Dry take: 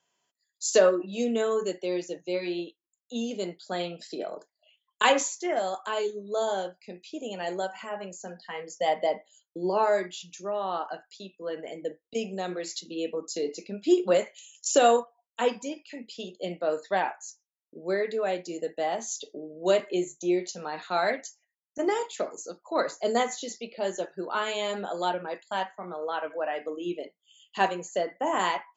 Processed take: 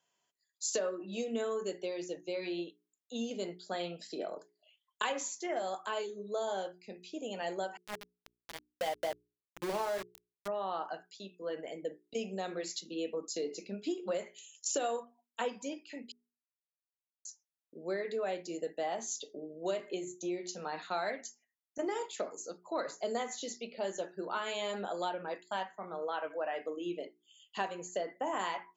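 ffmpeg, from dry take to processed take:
ffmpeg -i in.wav -filter_complex "[0:a]asettb=1/sr,asplit=3[link_01][link_02][link_03];[link_01]atrim=end=7.774[link_04];[link_02]atrim=start=7.77:end=10.48,asetpts=PTS-STARTPTS,afade=type=in:duration=0.004:curve=qsin,afade=type=out:start_time=2.706:duration=0.004:curve=qsin,aeval=exprs='val(0)*gte(abs(val(0)),0.0376)':channel_layout=same[link_05];[link_03]atrim=start=10.476[link_06];[link_04][link_05]acrossfade=duration=0.004:curve1=hsin:curve2=qsin[link_07];[link_07][link_06]acrossfade=duration=0.004:curve1=qsin:curve2=hsin,asplit=3[link_08][link_09][link_10];[link_08]atrim=end=16.12,asetpts=PTS-STARTPTS,afade=type=out:start_time=16.116:duration=0.004:curve=hsin[link_11];[link_09]atrim=start=16.12:end=17.25,asetpts=PTS-STARTPTS,volume=0[link_12];[link_10]atrim=start=17.25,asetpts=PTS-STARTPTS,afade=type=in:duration=0.004:curve=hsin[link_13];[link_11][link_12][link_13]concat=n=3:v=0:a=1,acompressor=threshold=-27dB:ratio=6,bandreject=frequency=60:width_type=h:width=6,bandreject=frequency=120:width_type=h:width=6,bandreject=frequency=180:width_type=h:width=6,bandreject=frequency=240:width_type=h:width=6,bandreject=frequency=300:width_type=h:width=6,bandreject=frequency=360:width_type=h:width=6,bandreject=frequency=420:width_type=h:width=6,volume=-4dB" out.wav

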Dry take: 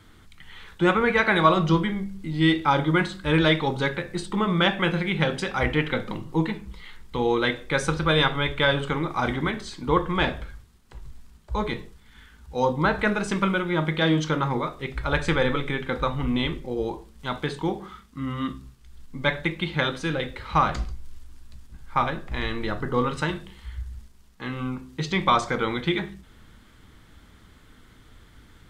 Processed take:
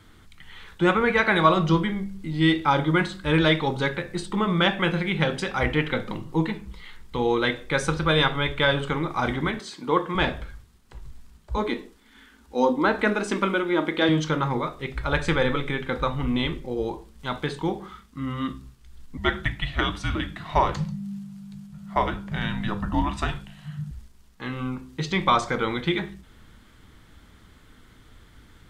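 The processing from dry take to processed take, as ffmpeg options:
ffmpeg -i in.wav -filter_complex "[0:a]asettb=1/sr,asplit=3[link_01][link_02][link_03];[link_01]atrim=end=9.594[link_04];[link_02]atrim=start=9.59:end=10.15,asetpts=PTS-STARTPTS,afade=type=in:duration=0.004:curve=qsin,afade=type=out:start_time=0.556:duration=0.004:curve=qsin,highpass=210[link_05];[link_03]atrim=start=10.146[link_06];[link_04][link_05]acrossfade=duration=0.004:curve1=hsin:curve2=qsin[link_07];[link_07][link_06]acrossfade=duration=0.004:curve1=qsin:curve2=hsin,asettb=1/sr,asplit=3[link_08][link_09][link_10];[link_08]atrim=end=11.574[link_11];[link_09]atrim=start=11.57:end=14.09,asetpts=PTS-STARTPTS,afade=type=in:duration=0.004:curve=qsin,afade=type=out:start_time=2.516:duration=0.004:curve=qsin,lowshelf=frequency=190:width_type=q:width=3:gain=-10[link_12];[link_10]atrim=start=14.086[link_13];[link_11][link_12]acrossfade=duration=0.004:curve1=hsin:curve2=qsin[link_14];[link_14][link_13]acrossfade=duration=0.004:curve1=qsin:curve2=hsin,asettb=1/sr,asplit=3[link_15][link_16][link_17];[link_15]atrim=end=19.174[link_18];[link_16]atrim=start=19.17:end=23.91,asetpts=PTS-STARTPTS,afade=type=in:duration=0.004:curve=qsin,afade=type=out:start_time=4.736:duration=0.004:curve=qsin,afreqshift=-210[link_19];[link_17]atrim=start=23.906[link_20];[link_18][link_19]acrossfade=duration=0.004:curve1=hsin:curve2=qsin[link_21];[link_21][link_20]acrossfade=duration=0.004:curve1=qsin:curve2=hsin" out.wav

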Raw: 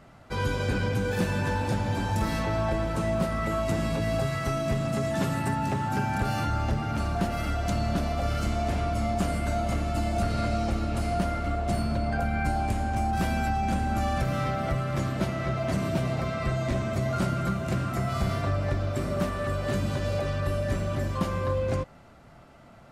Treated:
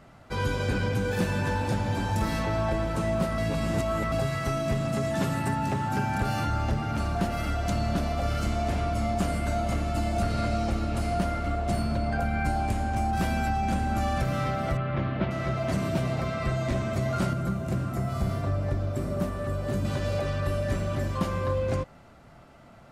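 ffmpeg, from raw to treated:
ffmpeg -i in.wav -filter_complex "[0:a]asettb=1/sr,asplit=3[link_01][link_02][link_03];[link_01]atrim=end=14.774[link_04];[link_02]atrim=start=14.77:end=15.31,asetpts=PTS-STARTPTS,afade=type=in:duration=0.004:curve=qsin,afade=type=out:start_time=0.536:duration=0.004:curve=qsin,lowpass=frequency=3300:width=0.5412,lowpass=frequency=3300:width=1.3066[link_05];[link_03]atrim=start=15.306[link_06];[link_04][link_05]acrossfade=duration=0.004:curve1=hsin:curve2=qsin[link_07];[link_07][link_06]acrossfade=duration=0.004:curve1=qsin:curve2=hsin,asettb=1/sr,asplit=3[link_08][link_09][link_10];[link_08]atrim=end=17.334[link_11];[link_09]atrim=start=17.33:end=19.85,asetpts=PTS-STARTPTS,afade=type=in:duration=0.004:curve=qsin,afade=type=out:start_time=2.516:duration=0.004:curve=qsin,equalizer=frequency=2800:width=0.36:gain=-7.5[link_12];[link_10]atrim=start=19.846[link_13];[link_11][link_12]acrossfade=duration=0.004:curve1=hsin:curve2=qsin[link_14];[link_14][link_13]acrossfade=duration=0.004:curve1=qsin:curve2=hsin,asplit=3[link_15][link_16][link_17];[link_15]atrim=end=3.382[link_18];[link_16]atrim=start=3.378:end=4.122,asetpts=PTS-STARTPTS,areverse[link_19];[link_17]atrim=start=4.118[link_20];[link_18][link_19]acrossfade=duration=0.004:curve1=hsin:curve2=hsin[link_21];[link_21][link_20]acrossfade=duration=0.004:curve1=hsin:curve2=hsin" out.wav

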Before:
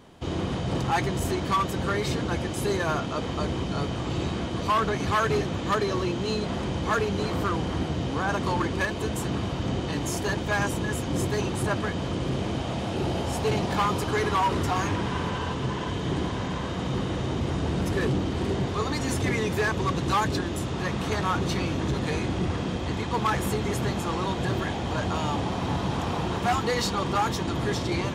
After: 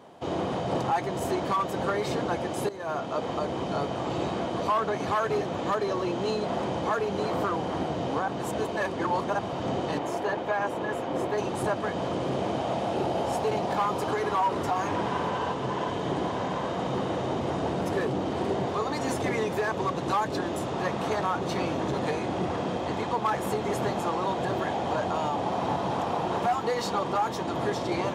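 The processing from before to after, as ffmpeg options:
ffmpeg -i in.wav -filter_complex "[0:a]asettb=1/sr,asplit=3[link_01][link_02][link_03];[link_01]atrim=end=9.984[link_04];[link_02]atrim=start=9.98:end=11.38,asetpts=PTS-STARTPTS,afade=type=in:duration=0.004:curve=qsin,afade=type=out:start_time=1.396:duration=0.004:curve=qsin,bass=frequency=250:gain=-7,treble=frequency=4000:gain=-11[link_05];[link_03]atrim=start=11.376[link_06];[link_04][link_05]acrossfade=duration=0.004:curve1=hsin:curve2=qsin[link_07];[link_07][link_06]acrossfade=duration=0.004:curve1=qsin:curve2=hsin,asplit=4[link_08][link_09][link_10][link_11];[link_08]atrim=end=2.69,asetpts=PTS-STARTPTS,afade=type=out:start_time=2.686:duration=0.004:curve=hsin:silence=0.158489[link_12];[link_09]atrim=start=2.69:end=8.282,asetpts=PTS-STARTPTS,afade=type=in:duration=0.65:silence=0.158489[link_13];[link_10]atrim=start=8.278:end=9.392,asetpts=PTS-STARTPTS,areverse[link_14];[link_11]atrim=start=9.388[link_15];[link_12][link_13]concat=n=2:v=0:a=1[link_16];[link_16][link_14]acrossfade=duration=0.004:curve1=hsin:curve2=hsin[link_17];[link_17][link_15]acrossfade=duration=0.004:curve1=hsin:curve2=hsin,highpass=120,equalizer=frequency=690:width_type=o:width=1.6:gain=11,alimiter=limit=-14dB:level=0:latency=1:release=290,volume=-4dB" out.wav

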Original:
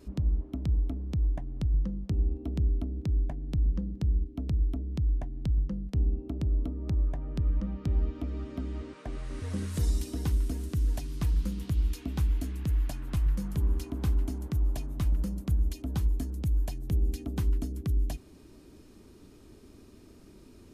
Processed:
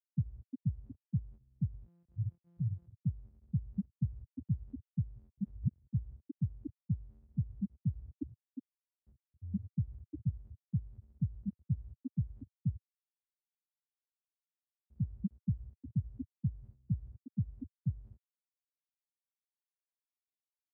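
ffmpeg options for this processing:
ffmpeg -i in.wav -filter_complex "[0:a]asettb=1/sr,asplit=3[link_01][link_02][link_03];[link_01]atrim=end=1.864[link_04];[link_02]atrim=start=1.86:end=2.87,asetpts=PTS-STARTPTS,afade=type=in:duration=0.004:curve=qsin,afade=type=out:start_time=1.006:duration=0.004:curve=qsin,aeval=exprs='abs(val(0))':channel_layout=same[link_05];[link_03]atrim=start=2.866[link_06];[link_04][link_05]acrossfade=duration=0.004:curve1=hsin:curve2=qsin[link_07];[link_07][link_06]acrossfade=duration=0.004:curve1=qsin:curve2=hsin,asplit=5[link_08][link_09][link_10][link_11][link_12];[link_08]atrim=end=5.352[link_13];[link_09]atrim=start=5.348:end=5.792,asetpts=PTS-STARTPTS,areverse[link_14];[link_10]atrim=start=5.788:end=12.76,asetpts=PTS-STARTPTS,afade=type=out:start_time=6.968:duration=0.004:curve=hsin[link_15];[link_11]atrim=start=12.76:end=14.9,asetpts=PTS-STARTPTS,volume=0[link_16];[link_12]atrim=start=14.9,asetpts=PTS-STARTPTS,afade=type=in:duration=0.004:curve=hsin[link_17];[link_13][link_14]acrossfade=duration=0.004:curve1=hsin:curve2=hsin[link_18];[link_15][link_16][link_17]concat=n=3:v=0:a=1[link_19];[link_18][link_19]acrossfade=duration=0.004:curve1=hsin:curve2=hsin,lowpass=1400,afftfilt=real='re*gte(hypot(re,im),0.251)':imag='im*gte(hypot(re,im),0.251)':win_size=1024:overlap=0.75,highpass=frequency=110:width=0.5412,highpass=frequency=110:width=1.3066,volume=2.5dB" out.wav

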